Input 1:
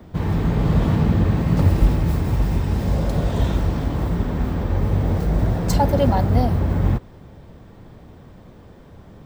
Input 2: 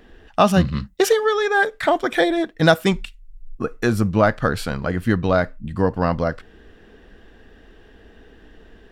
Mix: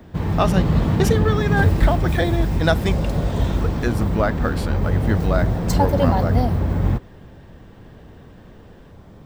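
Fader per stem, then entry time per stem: -0.5 dB, -4.5 dB; 0.00 s, 0.00 s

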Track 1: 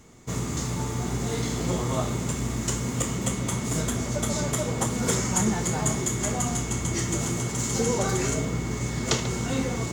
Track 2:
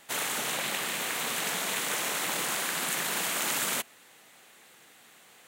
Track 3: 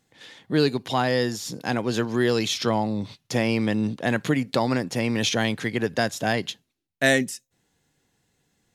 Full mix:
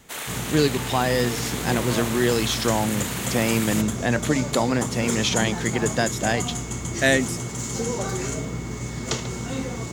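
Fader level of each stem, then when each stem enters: -2.0 dB, -1.5 dB, +0.5 dB; 0.00 s, 0.00 s, 0.00 s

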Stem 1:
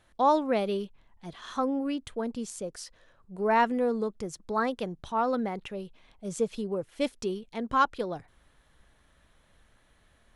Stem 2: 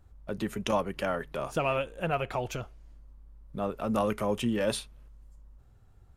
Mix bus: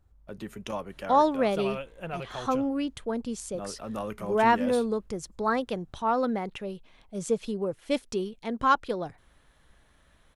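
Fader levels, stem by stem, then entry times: +1.5 dB, -6.5 dB; 0.90 s, 0.00 s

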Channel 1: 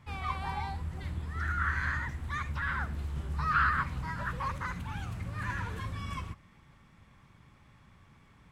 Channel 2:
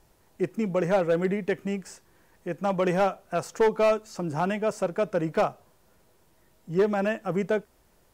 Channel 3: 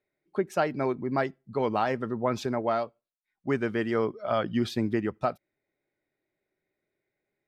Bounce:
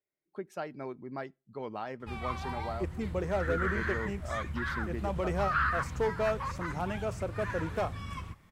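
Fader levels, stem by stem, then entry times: -2.0 dB, -8.5 dB, -12.0 dB; 2.00 s, 2.40 s, 0.00 s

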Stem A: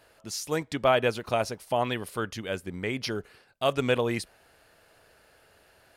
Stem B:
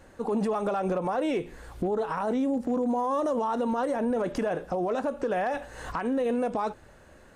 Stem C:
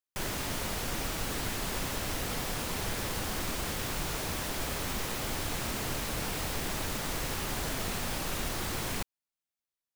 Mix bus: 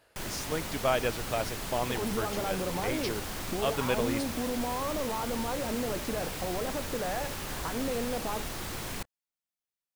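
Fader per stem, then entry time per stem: -5.0 dB, -6.5 dB, -3.0 dB; 0.00 s, 1.70 s, 0.00 s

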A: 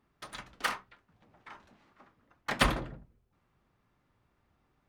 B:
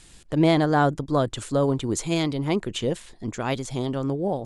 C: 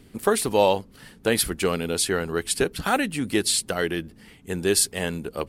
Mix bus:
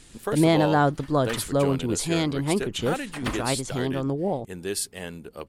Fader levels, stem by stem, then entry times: -6.0 dB, -0.5 dB, -8.5 dB; 0.65 s, 0.00 s, 0.00 s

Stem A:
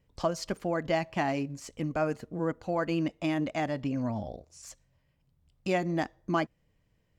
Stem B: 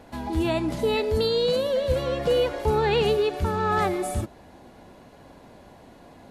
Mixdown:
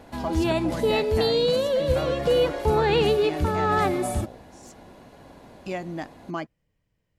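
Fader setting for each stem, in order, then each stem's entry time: -3.5 dB, +1.0 dB; 0.00 s, 0.00 s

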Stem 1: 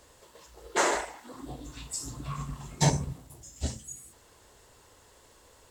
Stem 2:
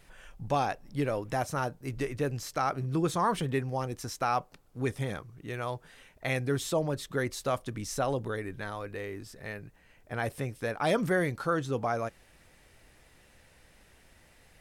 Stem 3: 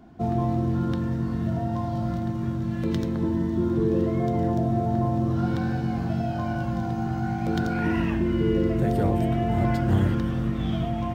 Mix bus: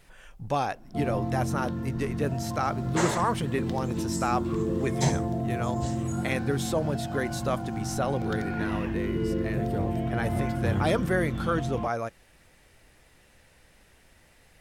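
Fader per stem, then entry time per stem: -3.5 dB, +1.0 dB, -5.5 dB; 2.20 s, 0.00 s, 0.75 s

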